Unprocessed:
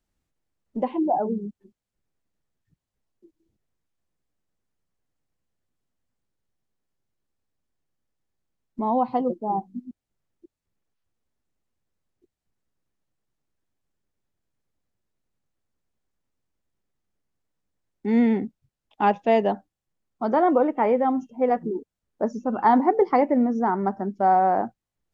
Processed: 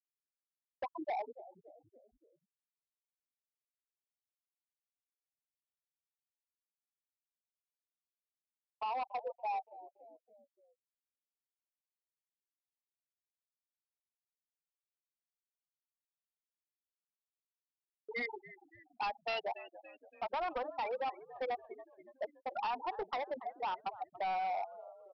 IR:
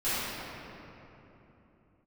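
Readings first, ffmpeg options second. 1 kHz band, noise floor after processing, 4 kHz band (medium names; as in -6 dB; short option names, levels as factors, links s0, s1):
-14.5 dB, under -85 dBFS, no reading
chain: -filter_complex "[0:a]aeval=exprs='val(0)+0.5*0.0168*sgn(val(0))':c=same,highpass=1100,afftfilt=real='re*gte(hypot(re,im),0.0794)':imag='im*gte(hypot(re,im),0.0794)':win_size=1024:overlap=0.75,acompressor=threshold=0.0112:ratio=3,agate=range=0.002:threshold=0.00112:ratio=16:detection=peak,aexciter=amount=9.7:drive=5.1:freq=2700,asplit=5[s0][s1][s2][s3][s4];[s1]adelay=284,afreqshift=-68,volume=0.119[s5];[s2]adelay=568,afreqshift=-136,volume=0.0582[s6];[s3]adelay=852,afreqshift=-204,volume=0.0285[s7];[s4]adelay=1136,afreqshift=-272,volume=0.014[s8];[s0][s5][s6][s7][s8]amix=inputs=5:normalize=0,aresample=11025,asoftclip=type=hard:threshold=0.0126,aresample=44100,volume=1.78"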